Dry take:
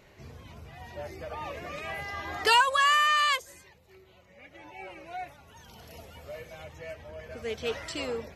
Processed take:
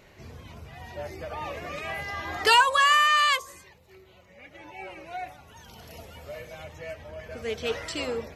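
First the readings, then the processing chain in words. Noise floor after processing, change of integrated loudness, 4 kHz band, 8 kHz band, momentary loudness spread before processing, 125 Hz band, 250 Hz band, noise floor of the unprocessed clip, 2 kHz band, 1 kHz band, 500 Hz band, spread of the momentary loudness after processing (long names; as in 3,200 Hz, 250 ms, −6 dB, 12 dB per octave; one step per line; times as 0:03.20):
−55 dBFS, +3.0 dB, +3.0 dB, +3.0 dB, 23 LU, +2.5 dB, +2.5 dB, −58 dBFS, +3.0 dB, +2.5 dB, +2.5 dB, 23 LU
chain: hum removal 67.45 Hz, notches 18
level +3 dB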